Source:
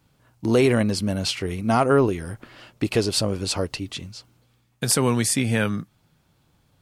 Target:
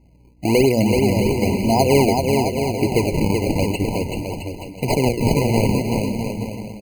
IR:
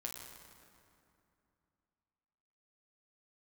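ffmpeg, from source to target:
-filter_complex "[0:a]bandreject=frequency=60:width_type=h:width=6,bandreject=frequency=120:width_type=h:width=6,bandreject=frequency=180:width_type=h:width=6,bandreject=frequency=240:width_type=h:width=6,asplit=2[link_01][link_02];[link_02]acompressor=threshold=-27dB:ratio=6,volume=-2.5dB[link_03];[link_01][link_03]amix=inputs=2:normalize=0,acrusher=samples=36:mix=1:aa=0.000001:lfo=1:lforange=57.6:lforate=0.99,aeval=exprs='val(0)+0.002*(sin(2*PI*60*n/s)+sin(2*PI*2*60*n/s)/2+sin(2*PI*3*60*n/s)/3+sin(2*PI*4*60*n/s)/4+sin(2*PI*5*60*n/s)/5)':channel_layout=same,asplit=2[link_04][link_05];[link_05]aecho=0:1:380|665|878.8|1039|1159:0.631|0.398|0.251|0.158|0.1[link_06];[link_04][link_06]amix=inputs=2:normalize=0,afftfilt=real='re*eq(mod(floor(b*sr/1024/1000),2),0)':imag='im*eq(mod(floor(b*sr/1024/1000),2),0)':win_size=1024:overlap=0.75,volume=1.5dB"

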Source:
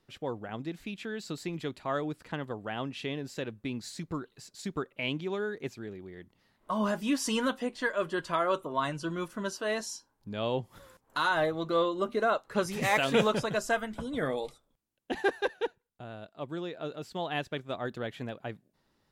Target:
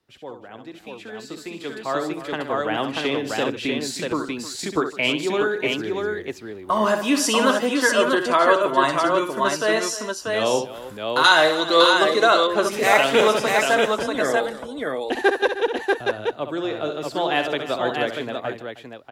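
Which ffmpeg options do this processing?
ffmpeg -i in.wav -filter_complex "[0:a]highpass=40,acrossover=split=230|430|1900[link_01][link_02][link_03][link_04];[link_01]acompressor=threshold=-53dB:ratio=5[link_05];[link_05][link_02][link_03][link_04]amix=inputs=4:normalize=0,equalizer=frequency=180:width_type=o:width=0.42:gain=-6,aecho=1:1:65|153|311|639:0.398|0.112|0.168|0.668,dynaudnorm=framelen=470:gausssize=9:maxgain=13.5dB,asettb=1/sr,asplit=3[link_06][link_07][link_08];[link_06]atrim=end=11.244[link_09];[link_07]atrim=start=11.24:end=12.47,asetpts=PTS-STARTPTS,afade=type=in:duration=0.004:curve=qsin,afade=type=out:start_time=1.226:duration=0.004:curve=qsin,equalizer=frequency=5500:width_type=o:width=2.4:gain=12.5[link_10];[link_08]atrim=start=12.466[link_11];[link_09][link_10]acrossfade=duration=0.004:curve1=hsin:curve2=qsin[link_12];[link_12][link_11]acrossfade=duration=0.004:curve1=qsin:curve2=hsin,volume=-1dB" out.wav

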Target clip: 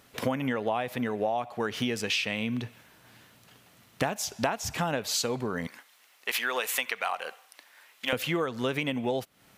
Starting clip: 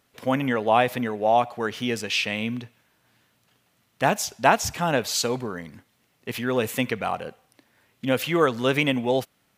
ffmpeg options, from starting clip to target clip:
ffmpeg -i in.wav -filter_complex "[0:a]asettb=1/sr,asplit=3[link_01][link_02][link_03];[link_01]atrim=end=5.674[link_04];[link_02]atrim=start=5.67:end=8.13,asetpts=PTS-STARTPTS,afade=type=in:duration=0.004:curve=qsin,afade=type=out:start_time=2.456:duration=0.004:curve=qsin,highpass=910[link_05];[link_03]atrim=start=8.126[link_06];[link_04][link_05]acrossfade=duration=0.004:curve1=hsin:curve2=qsin[link_07];[link_07][link_06]acrossfade=duration=0.004:curve1=qsin:curve2=hsin,acompressor=threshold=-34dB:ratio=12,volume=8.5dB" out.wav

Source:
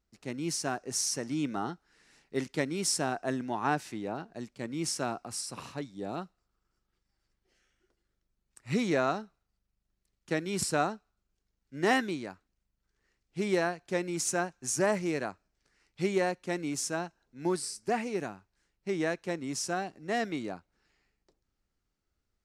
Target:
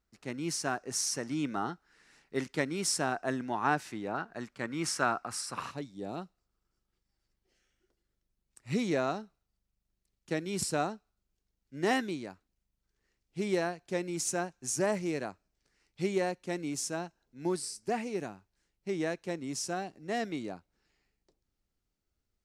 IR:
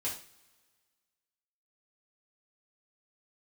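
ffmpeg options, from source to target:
-af "asetnsamples=nb_out_samples=441:pad=0,asendcmd='4.14 equalizer g 12;5.71 equalizer g -3.5',equalizer=frequency=1400:width=0.98:gain=4,volume=-1.5dB"

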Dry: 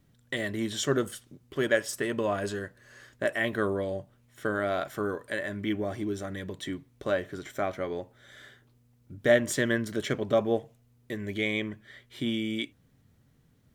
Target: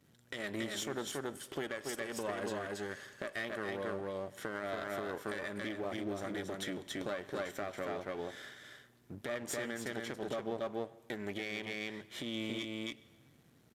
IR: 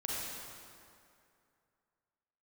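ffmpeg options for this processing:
-filter_complex "[0:a]aeval=exprs='if(lt(val(0),0),0.251*val(0),val(0))':channel_layout=same,aecho=1:1:278:0.596,acompressor=threshold=-38dB:ratio=3,asplit=2[link_01][link_02];[1:a]atrim=start_sample=2205,asetrate=79380,aresample=44100,adelay=98[link_03];[link_02][link_03]afir=irnorm=-1:irlink=0,volume=-20dB[link_04];[link_01][link_04]amix=inputs=2:normalize=0,aresample=32000,aresample=44100,highpass=frequency=210:poles=1,alimiter=level_in=7dB:limit=-24dB:level=0:latency=1:release=155,volume=-7dB,volume=5dB"

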